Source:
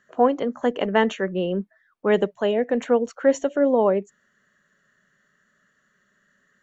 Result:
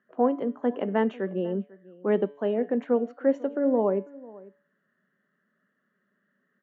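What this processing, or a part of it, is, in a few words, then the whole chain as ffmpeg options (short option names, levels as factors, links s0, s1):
phone in a pocket: -filter_complex "[0:a]highpass=180,lowpass=3200,equalizer=f=240:t=o:w=1.6:g=6,highshelf=f=2100:g=-9,asplit=2[s0][s1];[s1]adelay=495.6,volume=0.0891,highshelf=f=4000:g=-11.2[s2];[s0][s2]amix=inputs=2:normalize=0,bandreject=f=143.1:t=h:w=4,bandreject=f=286.2:t=h:w=4,bandreject=f=429.3:t=h:w=4,bandreject=f=572.4:t=h:w=4,bandreject=f=715.5:t=h:w=4,bandreject=f=858.6:t=h:w=4,bandreject=f=1001.7:t=h:w=4,bandreject=f=1144.8:t=h:w=4,bandreject=f=1287.9:t=h:w=4,bandreject=f=1431:t=h:w=4,bandreject=f=1574.1:t=h:w=4,bandreject=f=1717.2:t=h:w=4,bandreject=f=1860.3:t=h:w=4,bandreject=f=2003.4:t=h:w=4,bandreject=f=2146.5:t=h:w=4,bandreject=f=2289.6:t=h:w=4,bandreject=f=2432.7:t=h:w=4,bandreject=f=2575.8:t=h:w=4,bandreject=f=2718.9:t=h:w=4,bandreject=f=2862:t=h:w=4,bandreject=f=3005.1:t=h:w=4,bandreject=f=3148.2:t=h:w=4,bandreject=f=3291.3:t=h:w=4,bandreject=f=3434.4:t=h:w=4,bandreject=f=3577.5:t=h:w=4,bandreject=f=3720.6:t=h:w=4,bandreject=f=3863.7:t=h:w=4,bandreject=f=4006.8:t=h:w=4,bandreject=f=4149.9:t=h:w=4,bandreject=f=4293:t=h:w=4,bandreject=f=4436.1:t=h:w=4,bandreject=f=4579.2:t=h:w=4,bandreject=f=4722.3:t=h:w=4,bandreject=f=4865.4:t=h:w=4,bandreject=f=5008.5:t=h:w=4,volume=0.473"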